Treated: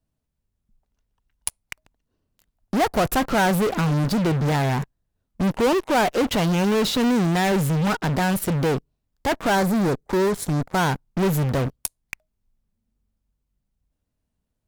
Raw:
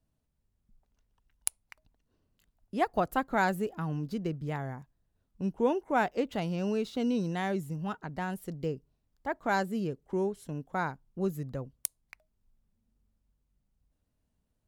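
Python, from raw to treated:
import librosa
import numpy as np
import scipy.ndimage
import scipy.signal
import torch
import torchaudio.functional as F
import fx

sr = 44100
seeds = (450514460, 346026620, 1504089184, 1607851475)

p1 = fx.fuzz(x, sr, gain_db=50.0, gate_db=-54.0)
p2 = x + F.gain(torch.from_numpy(p1), -8.0).numpy()
y = fx.peak_eq(p2, sr, hz=2900.0, db=-7.5, octaves=0.48, at=(9.55, 10.78))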